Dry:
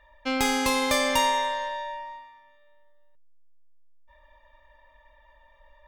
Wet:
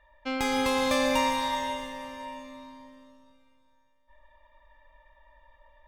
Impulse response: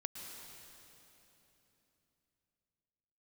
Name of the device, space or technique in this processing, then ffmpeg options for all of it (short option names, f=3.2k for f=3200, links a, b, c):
swimming-pool hall: -filter_complex "[1:a]atrim=start_sample=2205[a];[0:a][a]afir=irnorm=-1:irlink=0,highshelf=f=4.9k:g=-7,bandreject=f=430:w=13"